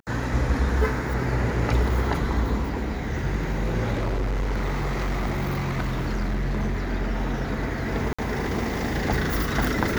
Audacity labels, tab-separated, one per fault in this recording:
3.930000	6.890000	clipped -22 dBFS
8.130000	8.190000	dropout 55 ms

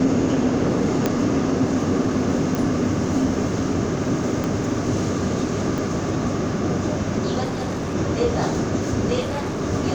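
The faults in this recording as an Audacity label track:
1.060000	1.060000	pop -6 dBFS
2.550000	2.550000	pop
4.440000	4.440000	pop -12 dBFS
5.780000	5.780000	dropout 2.2 ms
7.430000	7.950000	clipped -22 dBFS
9.200000	9.620000	clipped -22.5 dBFS

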